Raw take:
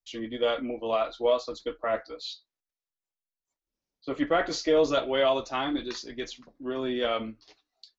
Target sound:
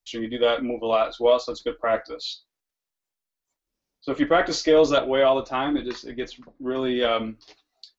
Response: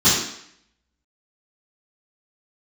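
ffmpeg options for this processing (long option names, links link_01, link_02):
-filter_complex "[0:a]asettb=1/sr,asplit=3[link_01][link_02][link_03];[link_01]atrim=end=4.984[link_04];[link_02]atrim=start=4.98:end=6.75,asetpts=PTS-STARTPTS,afade=type=in:duration=0.004:curve=qsin,afade=type=out:start_time=1.766:duration=0.004:curve=qsin,aemphasis=mode=reproduction:type=75kf[link_05];[link_03]atrim=start=6.746[link_06];[link_04][link_05]acrossfade=duration=0.004:curve1=hsin:curve2=qsin[link_07];[link_07][link_06]acrossfade=duration=0.004:curve1=qsin:curve2=hsin,volume=5.5dB"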